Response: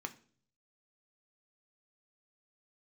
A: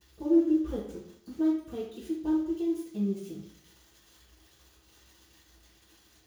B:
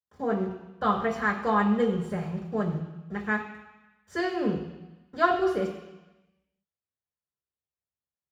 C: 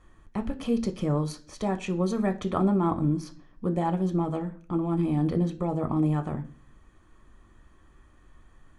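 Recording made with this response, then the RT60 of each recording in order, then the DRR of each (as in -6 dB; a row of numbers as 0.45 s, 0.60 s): C; 0.70 s, 1.0 s, 0.45 s; -13.0 dB, -9.5 dB, 6.5 dB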